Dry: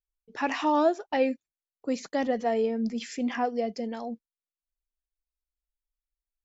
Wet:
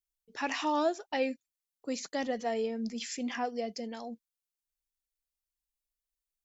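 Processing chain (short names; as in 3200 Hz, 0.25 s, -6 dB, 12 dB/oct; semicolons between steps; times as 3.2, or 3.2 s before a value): high shelf 2900 Hz +11.5 dB; gain -6.5 dB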